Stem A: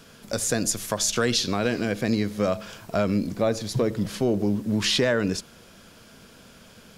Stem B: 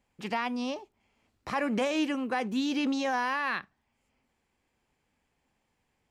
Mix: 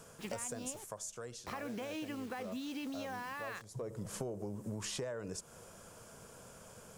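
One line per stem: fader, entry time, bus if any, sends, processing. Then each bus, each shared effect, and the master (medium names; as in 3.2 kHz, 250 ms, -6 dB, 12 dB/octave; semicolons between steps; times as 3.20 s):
-7.0 dB, 0.00 s, no send, graphic EQ 125/250/500/1000/2000/4000/8000 Hz +5/-6/+6/+6/-3/-9/+11 dB; auto duck -19 dB, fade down 1.15 s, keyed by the second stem
-6.0 dB, 0.00 s, no send, compression, threshold -31 dBFS, peak gain reduction 7 dB; bit crusher 8-bit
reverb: none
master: compression 16:1, threshold -37 dBFS, peak gain reduction 17 dB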